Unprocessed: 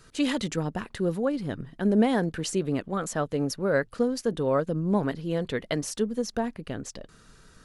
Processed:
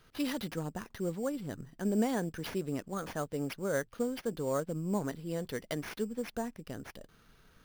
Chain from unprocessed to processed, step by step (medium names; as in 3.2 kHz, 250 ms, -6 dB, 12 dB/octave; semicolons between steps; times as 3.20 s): sample-rate reducer 7.8 kHz, jitter 0%; trim -8 dB